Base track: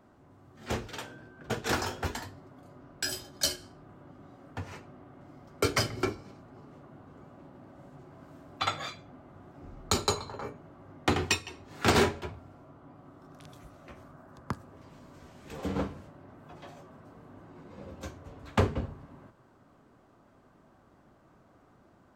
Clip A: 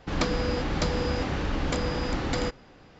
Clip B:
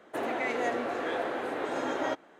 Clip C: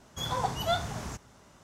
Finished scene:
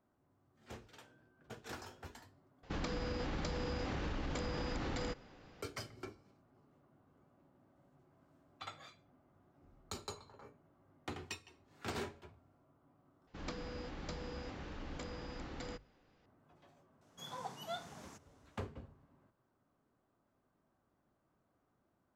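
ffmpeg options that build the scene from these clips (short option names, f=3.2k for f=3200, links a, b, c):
-filter_complex "[1:a]asplit=2[a][b];[0:a]volume=-18dB[c];[a]acompressor=threshold=-28dB:ratio=6:attack=3.2:release=140:knee=1:detection=peak[d];[b]bandreject=f=50:t=h:w=6,bandreject=f=100:t=h:w=6,bandreject=f=150:t=h:w=6[e];[3:a]highpass=f=150:w=0.5412,highpass=f=150:w=1.3066[f];[c]asplit=3[g][h][i];[g]atrim=end=2.634[j];[d]atrim=end=2.99,asetpts=PTS-STARTPTS,volume=-6.5dB[k];[h]atrim=start=5.616:end=13.274[l];[e]atrim=end=2.99,asetpts=PTS-STARTPTS,volume=-17.5dB[m];[i]atrim=start=16.256[n];[f]atrim=end=1.63,asetpts=PTS-STARTPTS,volume=-14.5dB,afade=t=in:d=0.004:c=hsin,afade=t=out:st=1.626:d=0.004:c=hsin,adelay=17010[o];[j][k]acrossfade=d=0.004:c1=hsin:c2=hsin[p];[p][l]acrossfade=d=0.004:c1=hsin:c2=hsin[q];[q][m]acrossfade=d=0.004:c1=hsin:c2=hsin[r];[r][n]acrossfade=d=0.004:c1=hsin:c2=hsin[s];[s][o]amix=inputs=2:normalize=0"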